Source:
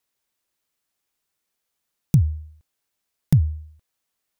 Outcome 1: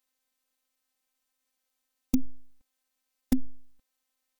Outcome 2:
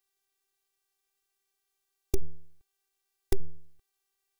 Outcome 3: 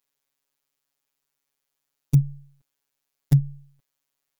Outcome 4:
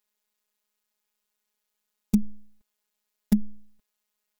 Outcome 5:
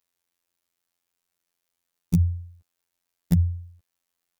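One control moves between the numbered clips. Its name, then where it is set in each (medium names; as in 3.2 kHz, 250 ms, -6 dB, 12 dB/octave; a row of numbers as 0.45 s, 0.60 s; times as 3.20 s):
robot voice, frequency: 260 Hz, 390 Hz, 140 Hz, 210 Hz, 87 Hz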